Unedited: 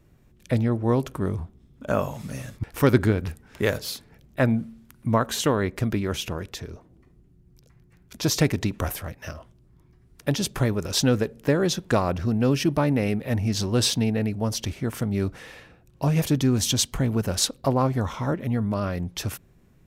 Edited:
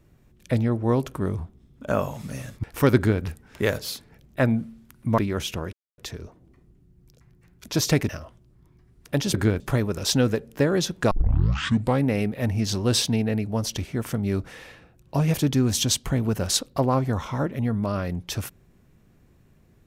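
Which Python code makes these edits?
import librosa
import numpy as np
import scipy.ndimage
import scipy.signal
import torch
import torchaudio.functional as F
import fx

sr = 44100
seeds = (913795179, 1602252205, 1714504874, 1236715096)

y = fx.edit(x, sr, fx.duplicate(start_s=2.96, length_s=0.26, to_s=10.48),
    fx.cut(start_s=5.18, length_s=0.74),
    fx.insert_silence(at_s=6.47, length_s=0.25),
    fx.cut(start_s=8.58, length_s=0.65),
    fx.tape_start(start_s=11.99, length_s=0.93), tone=tone)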